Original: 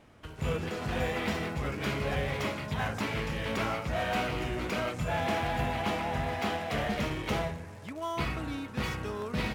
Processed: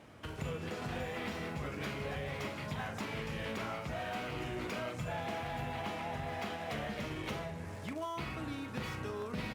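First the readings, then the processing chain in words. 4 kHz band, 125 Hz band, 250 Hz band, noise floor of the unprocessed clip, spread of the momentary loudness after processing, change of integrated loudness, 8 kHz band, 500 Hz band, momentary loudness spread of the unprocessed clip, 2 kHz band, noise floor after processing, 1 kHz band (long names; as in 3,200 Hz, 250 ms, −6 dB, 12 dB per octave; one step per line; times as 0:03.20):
−7.0 dB, −7.0 dB, −6.5 dB, −45 dBFS, 2 LU, −7.0 dB, −6.5 dB, −7.0 dB, 5 LU, −7.0 dB, −44 dBFS, −7.0 dB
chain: high-pass filter 70 Hz
downward compressor 6 to 1, threshold −39 dBFS, peak gain reduction 12 dB
double-tracking delay 41 ms −10.5 dB
level +2 dB
Opus 64 kbit/s 48,000 Hz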